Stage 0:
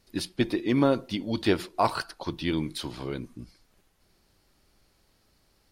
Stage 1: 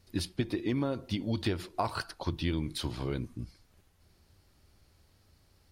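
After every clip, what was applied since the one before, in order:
parametric band 84 Hz +12 dB 1.1 octaves
downward compressor 12 to 1, threshold −25 dBFS, peak gain reduction 10 dB
level −1.5 dB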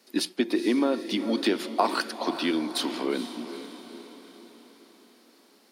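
Butterworth high-pass 220 Hz 48 dB per octave
feedback delay with all-pass diffusion 454 ms, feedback 52%, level −11 dB
level +8 dB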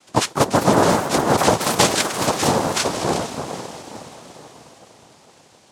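cochlear-implant simulation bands 2
delay with pitch and tempo change per echo 239 ms, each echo +4 semitones, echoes 2, each echo −6 dB
level +7.5 dB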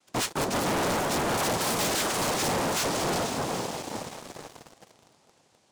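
leveller curve on the samples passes 3
soft clipping −18.5 dBFS, distortion −7 dB
level −7 dB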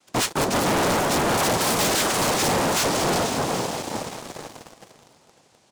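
single-tap delay 552 ms −19.5 dB
level +5.5 dB

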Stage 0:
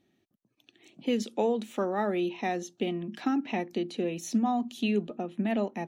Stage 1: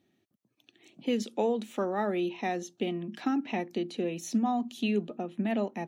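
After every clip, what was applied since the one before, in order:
high-pass filter 53 Hz
level −1 dB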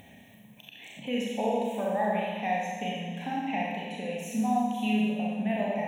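phaser with its sweep stopped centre 1,300 Hz, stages 6
four-comb reverb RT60 1.6 s, combs from 29 ms, DRR −4.5 dB
upward compression, threshold −35 dBFS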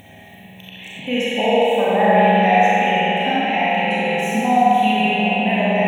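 dynamic equaliser 2,100 Hz, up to +4 dB, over −44 dBFS, Q 0.96
echo through a band-pass that steps 276 ms, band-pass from 2,800 Hz, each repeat −0.7 octaves, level −6.5 dB
spring reverb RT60 3.5 s, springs 48 ms, chirp 20 ms, DRR −4.5 dB
level +7.5 dB

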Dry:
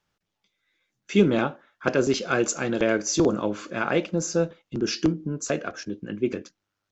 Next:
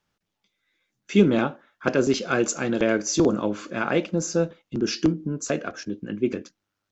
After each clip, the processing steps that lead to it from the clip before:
parametric band 240 Hz +3 dB 0.77 octaves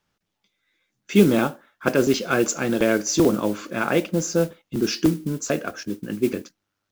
noise that follows the level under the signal 21 dB
every ending faded ahead of time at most 600 dB per second
level +2 dB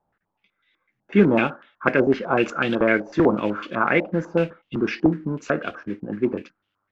low-pass on a step sequencer 8 Hz 770–3,100 Hz
level −1 dB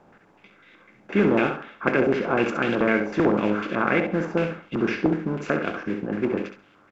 compressor on every frequency bin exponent 0.6
repeating echo 67 ms, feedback 22%, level −8 dB
level −6 dB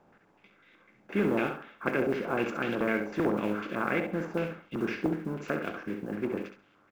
one scale factor per block 7 bits
level −7.5 dB

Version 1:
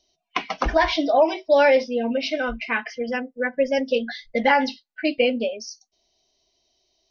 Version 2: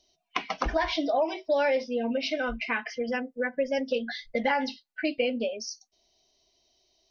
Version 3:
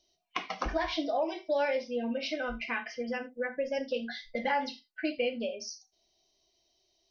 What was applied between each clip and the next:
downward compressor 2 to 1, threshold −29 dBFS, peak gain reduction 9.5 dB
reverb whose tail is shaped and stops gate 110 ms falling, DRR 6.5 dB; level −5 dB

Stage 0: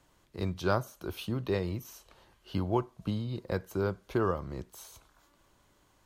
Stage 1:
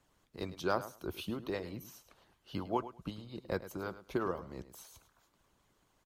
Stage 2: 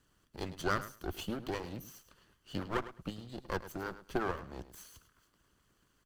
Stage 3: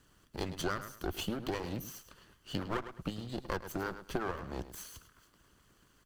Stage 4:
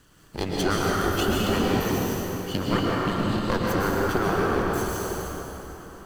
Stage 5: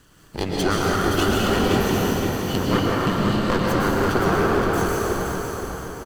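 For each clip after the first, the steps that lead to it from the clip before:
harmonic and percussive parts rebalanced harmonic −15 dB; repeating echo 105 ms, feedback 16%, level −14 dB; level −1.5 dB
lower of the sound and its delayed copy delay 0.65 ms; level +2 dB
downward compressor 5 to 1, threshold −38 dBFS, peak gain reduction 11 dB; level +6 dB
dense smooth reverb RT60 4.1 s, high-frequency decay 0.6×, pre-delay 105 ms, DRR −5 dB; level +8 dB
phase distortion by the signal itself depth 0.064 ms; repeating echo 521 ms, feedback 40%, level −6 dB; level +3 dB

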